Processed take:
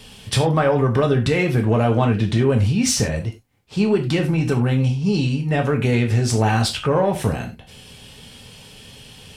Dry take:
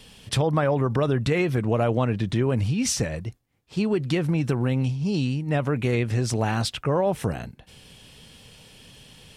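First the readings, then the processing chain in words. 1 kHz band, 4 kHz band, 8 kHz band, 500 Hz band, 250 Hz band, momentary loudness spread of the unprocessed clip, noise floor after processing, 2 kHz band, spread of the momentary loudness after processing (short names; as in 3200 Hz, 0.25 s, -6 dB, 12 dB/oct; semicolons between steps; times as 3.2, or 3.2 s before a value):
+5.5 dB, +6.0 dB, +5.5 dB, +5.0 dB, +5.0 dB, 6 LU, -44 dBFS, +5.5 dB, 6 LU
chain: in parallel at -3.5 dB: soft clip -19 dBFS, distortion -15 dB; on the sum: non-linear reverb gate 0.12 s falling, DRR 2.5 dB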